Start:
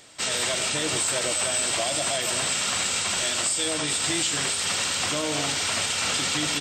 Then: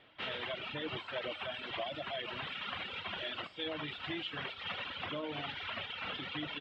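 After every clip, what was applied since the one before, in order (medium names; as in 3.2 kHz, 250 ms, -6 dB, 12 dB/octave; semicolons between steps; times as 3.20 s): reverb removal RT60 1.9 s; elliptic low-pass 3.3 kHz, stop band 80 dB; gain riding 0.5 s; trim -8 dB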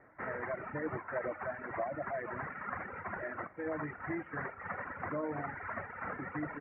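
steep low-pass 2 kHz 72 dB/octave; trim +3.5 dB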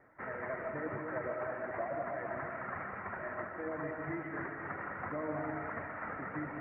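algorithmic reverb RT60 2 s, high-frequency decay 0.4×, pre-delay 85 ms, DRR 2 dB; trim -2.5 dB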